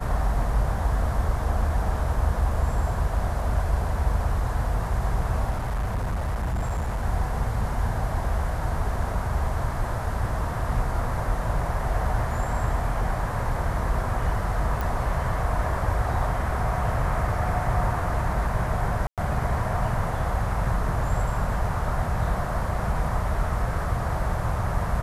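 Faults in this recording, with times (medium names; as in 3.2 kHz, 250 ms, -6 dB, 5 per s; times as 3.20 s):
5.50–7.05 s: clipped -23 dBFS
14.81 s: pop
19.07–19.18 s: dropout 107 ms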